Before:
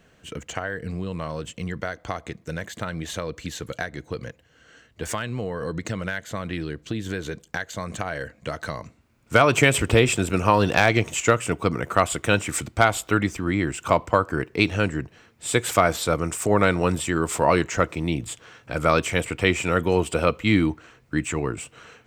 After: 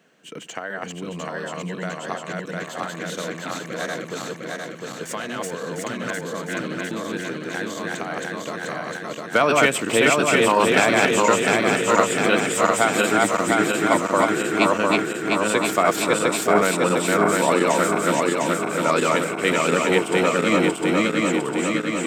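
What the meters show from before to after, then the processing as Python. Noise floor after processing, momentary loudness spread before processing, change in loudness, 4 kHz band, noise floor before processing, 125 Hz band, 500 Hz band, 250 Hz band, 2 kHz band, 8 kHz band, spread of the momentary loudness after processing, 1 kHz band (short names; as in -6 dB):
-35 dBFS, 15 LU, +3.0 dB, +3.5 dB, -59 dBFS, -5.5 dB, +3.5 dB, +3.0 dB, +4.0 dB, +3.5 dB, 14 LU, +4.0 dB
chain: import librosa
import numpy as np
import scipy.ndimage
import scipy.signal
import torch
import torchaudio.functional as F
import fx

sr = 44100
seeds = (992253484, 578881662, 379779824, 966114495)

y = fx.reverse_delay_fb(x, sr, ms=352, feedback_pct=79, wet_db=-0.5)
y = scipy.signal.sosfilt(scipy.signal.butter(4, 180.0, 'highpass', fs=sr, output='sos'), y)
y = y * librosa.db_to_amplitude(-1.5)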